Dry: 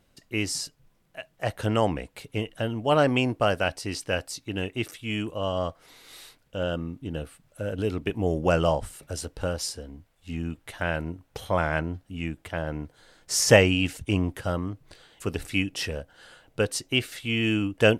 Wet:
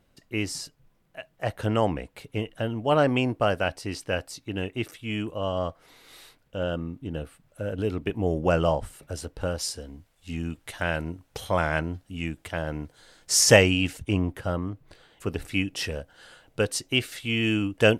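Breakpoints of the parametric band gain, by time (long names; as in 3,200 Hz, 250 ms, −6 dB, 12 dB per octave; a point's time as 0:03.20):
parametric band 7,600 Hz 2.5 octaves
0:09.40 −4.5 dB
0:09.83 +4.5 dB
0:13.52 +4.5 dB
0:14.23 −6 dB
0:15.33 −6 dB
0:15.88 +1 dB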